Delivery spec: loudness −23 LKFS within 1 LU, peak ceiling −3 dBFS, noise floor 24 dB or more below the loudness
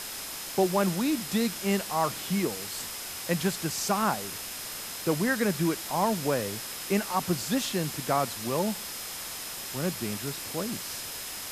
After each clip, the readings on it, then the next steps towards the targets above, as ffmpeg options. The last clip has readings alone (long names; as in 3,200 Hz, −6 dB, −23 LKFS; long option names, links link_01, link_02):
interfering tone 5,100 Hz; level of the tone −46 dBFS; background noise floor −38 dBFS; target noise floor −54 dBFS; integrated loudness −29.5 LKFS; sample peak −11.5 dBFS; target loudness −23.0 LKFS
→ -af "bandreject=frequency=5100:width=30"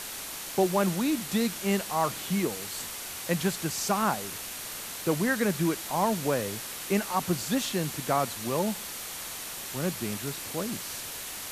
interfering tone none found; background noise floor −39 dBFS; target noise floor −54 dBFS
→ -af "afftdn=noise_reduction=15:noise_floor=-39"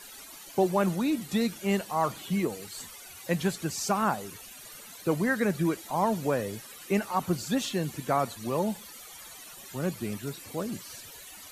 background noise floor −47 dBFS; target noise floor −54 dBFS
→ -af "afftdn=noise_reduction=7:noise_floor=-47"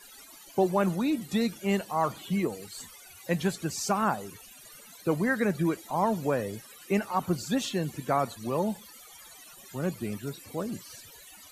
background noise floor −51 dBFS; target noise floor −54 dBFS
→ -af "afftdn=noise_reduction=6:noise_floor=-51"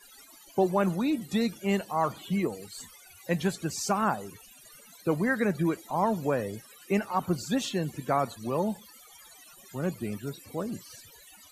background noise floor −54 dBFS; integrated loudness −30.0 LKFS; sample peak −12.0 dBFS; target loudness −23.0 LKFS
→ -af "volume=7dB"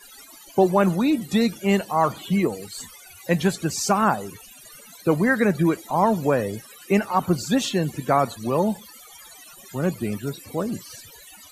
integrated loudness −23.0 LKFS; sample peak −5.0 dBFS; background noise floor −47 dBFS